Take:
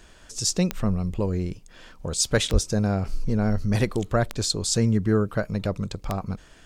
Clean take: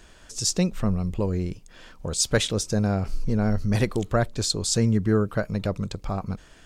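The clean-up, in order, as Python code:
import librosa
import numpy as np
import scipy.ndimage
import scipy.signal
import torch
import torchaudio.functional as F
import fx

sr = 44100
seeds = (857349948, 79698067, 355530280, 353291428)

y = fx.fix_declick_ar(x, sr, threshold=10.0)
y = fx.highpass(y, sr, hz=140.0, slope=24, at=(2.52, 2.64), fade=0.02)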